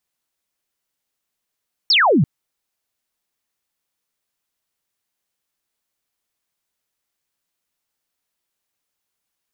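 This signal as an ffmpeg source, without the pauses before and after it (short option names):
-f lavfi -i "aevalsrc='0.282*clip(t/0.002,0,1)*clip((0.34-t)/0.002,0,1)*sin(2*PI*5600*0.34/log(120/5600)*(exp(log(120/5600)*t/0.34)-1))':d=0.34:s=44100"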